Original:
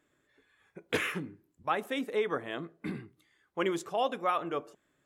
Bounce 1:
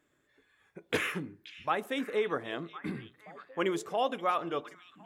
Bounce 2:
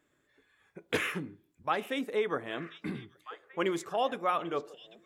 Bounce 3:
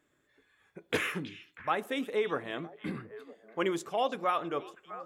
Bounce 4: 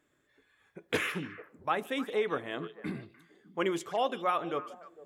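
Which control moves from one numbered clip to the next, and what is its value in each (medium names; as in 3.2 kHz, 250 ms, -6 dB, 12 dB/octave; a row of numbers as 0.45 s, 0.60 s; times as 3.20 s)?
repeats whose band climbs or falls, time: 528 ms, 793 ms, 321 ms, 150 ms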